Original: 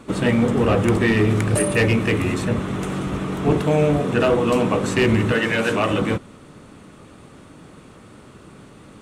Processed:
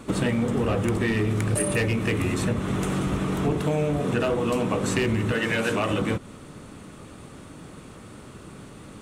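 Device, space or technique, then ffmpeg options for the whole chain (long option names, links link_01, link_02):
ASMR close-microphone chain: -af "lowshelf=frequency=130:gain=3.5,acompressor=threshold=-21dB:ratio=6,highshelf=frequency=6600:gain=6"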